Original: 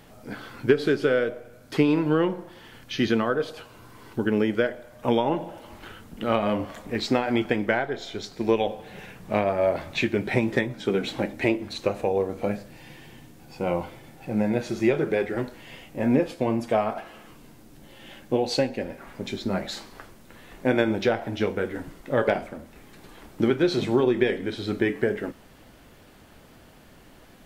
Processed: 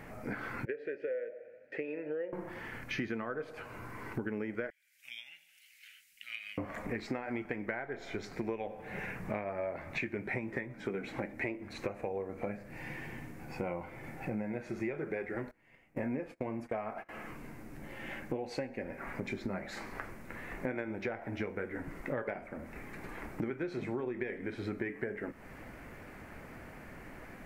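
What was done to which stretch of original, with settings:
0:00.65–0:02.33: formant filter e
0:04.70–0:06.58: inverse Chebyshev high-pass filter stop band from 1,100 Hz, stop band 50 dB
0:15.51–0:17.09: noise gate −39 dBFS, range −23 dB
whole clip: high shelf with overshoot 2,700 Hz −7 dB, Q 3; downward compressor 6 to 1, threshold −37 dBFS; level +2 dB

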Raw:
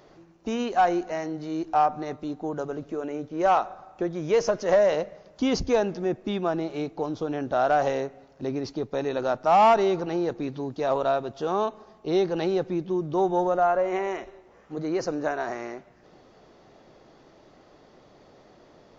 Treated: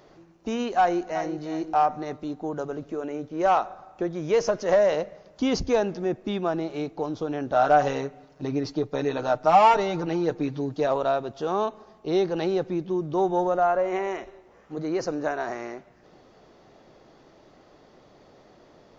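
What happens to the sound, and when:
0:00.79–0:01.46: delay throw 360 ms, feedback 20%, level −10.5 dB
0:07.54–0:10.87: comb filter 6.6 ms, depth 69%

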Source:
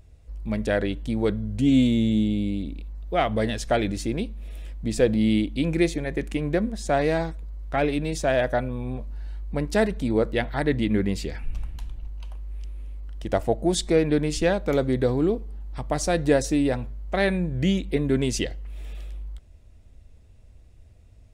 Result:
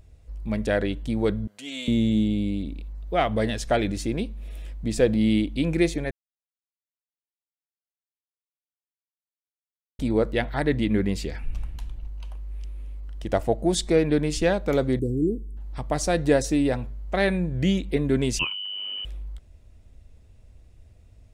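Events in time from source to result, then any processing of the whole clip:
0:01.47–0:01.88: high-pass filter 890 Hz
0:06.11–0:09.99: silence
0:14.99–0:15.57: elliptic band-stop filter 360–7,500 Hz, stop band 50 dB
0:18.39–0:19.05: voice inversion scrambler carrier 3,000 Hz

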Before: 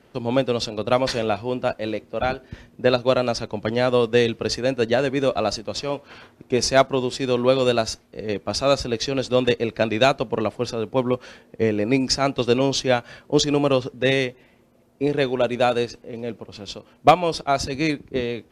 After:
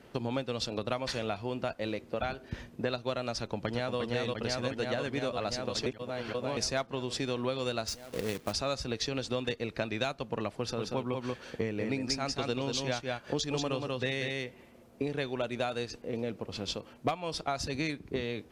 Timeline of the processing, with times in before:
0:03.38–0:03.98: delay throw 350 ms, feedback 75%, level −0.5 dB
0:05.86–0:06.57: reverse
0:07.88–0:08.53: log-companded quantiser 4 bits
0:10.57–0:15.11: single-tap delay 186 ms −5 dB
whole clip: dynamic equaliser 420 Hz, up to −5 dB, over −28 dBFS, Q 0.73; downward compressor 5 to 1, threshold −30 dBFS

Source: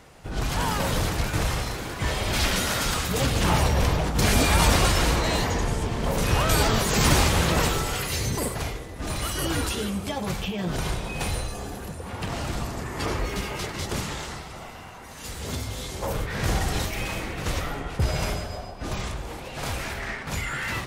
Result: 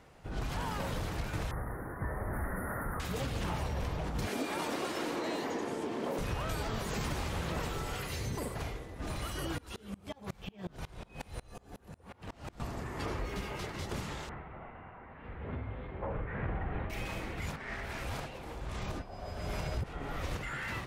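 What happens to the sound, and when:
0:01.51–0:03.00: Chebyshev band-stop filter 1,900–9,700 Hz, order 5
0:04.27–0:06.19: high-pass with resonance 300 Hz, resonance Q 2.2
0:09.58–0:12.60: tremolo with a ramp in dB swelling 5.5 Hz, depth 29 dB
0:14.29–0:16.90: inverse Chebyshev low-pass filter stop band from 5,600 Hz, stop band 50 dB
0:17.40–0:20.43: reverse
whole clip: high-shelf EQ 11,000 Hz +6.5 dB; downward compressor, threshold −24 dBFS; high-shelf EQ 4,700 Hz −11 dB; level −7 dB

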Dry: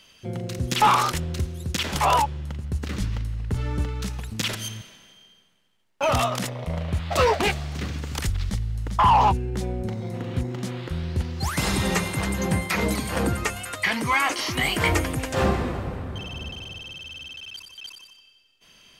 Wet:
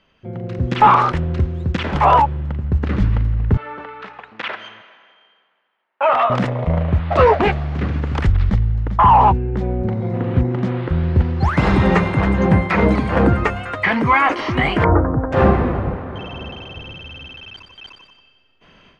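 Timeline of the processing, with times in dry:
0:03.57–0:06.30: band-pass filter 750–3,000 Hz
0:14.84–0:15.32: Butterworth low-pass 1,500 Hz 48 dB per octave
0:15.96–0:16.77: low-shelf EQ 190 Hz −11 dB
whole clip: low-pass filter 1,700 Hz 12 dB per octave; automatic gain control gain up to 11.5 dB

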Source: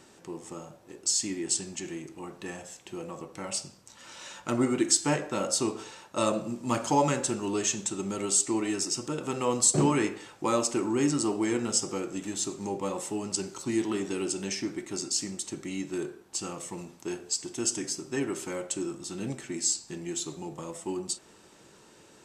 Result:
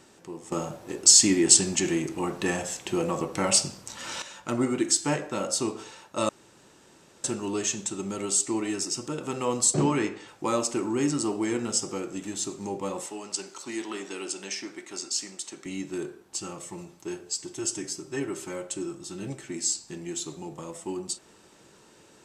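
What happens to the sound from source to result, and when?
0:00.52–0:04.22: clip gain +11.5 dB
0:06.29–0:07.24: fill with room tone
0:09.74–0:10.28: low-pass filter 7,000 Hz
0:13.06–0:15.66: meter weighting curve A
0:16.39–0:19.48: notch comb filter 240 Hz

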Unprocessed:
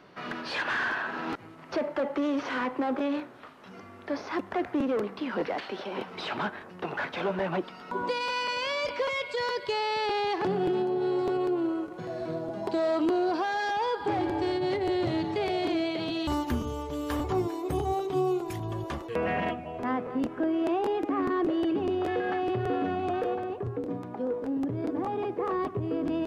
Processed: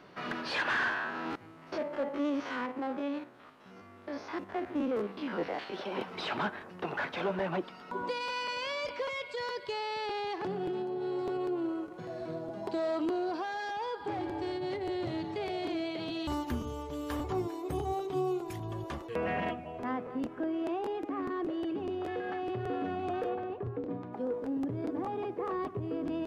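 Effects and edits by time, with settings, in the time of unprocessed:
0:00.89–0:05.74: spectrum averaged block by block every 50 ms
0:23.29–0:24.13: low-pass filter 4,000 Hz
whole clip: speech leveller 2 s; level −5.5 dB

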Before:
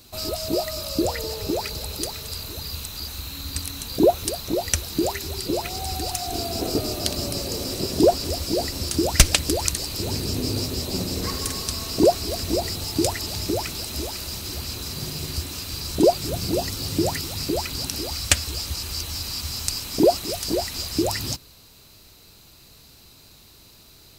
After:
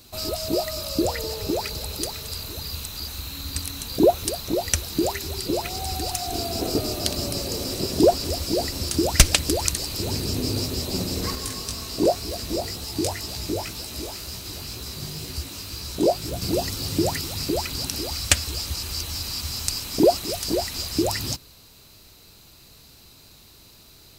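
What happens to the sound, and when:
0:11.35–0:16.42: chorus effect 2 Hz, delay 15.5 ms, depth 5.6 ms

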